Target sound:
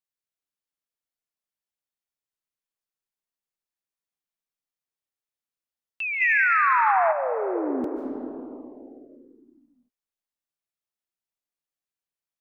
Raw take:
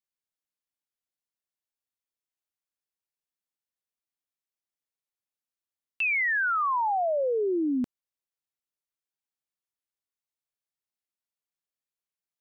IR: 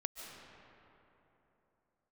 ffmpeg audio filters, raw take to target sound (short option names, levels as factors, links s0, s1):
-filter_complex "[1:a]atrim=start_sample=2205[s0];[0:a][s0]afir=irnorm=-1:irlink=0,asplit=3[s1][s2][s3];[s1]afade=t=out:st=6.2:d=0.02[s4];[s2]acontrast=82,afade=t=in:st=6.2:d=0.02,afade=t=out:st=7.11:d=0.02[s5];[s3]afade=t=in:st=7.11:d=0.02[s6];[s4][s5][s6]amix=inputs=3:normalize=0"